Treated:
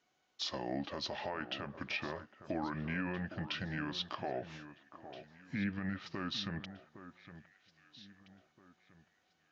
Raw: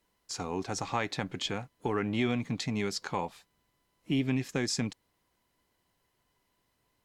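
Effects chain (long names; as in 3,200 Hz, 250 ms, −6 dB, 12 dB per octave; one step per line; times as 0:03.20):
elliptic low-pass filter 9,000 Hz, stop band 40 dB
treble cut that deepens with the level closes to 2,900 Hz, closed at −26.5 dBFS
high-pass filter 460 Hz 6 dB per octave
brickwall limiter −28 dBFS, peak gain reduction 10 dB
on a send: delay that swaps between a low-pass and a high-pass 601 ms, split 2,300 Hz, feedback 53%, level −12 dB
on the sum: wrong playback speed 45 rpm record played at 33 rpm
level +1 dB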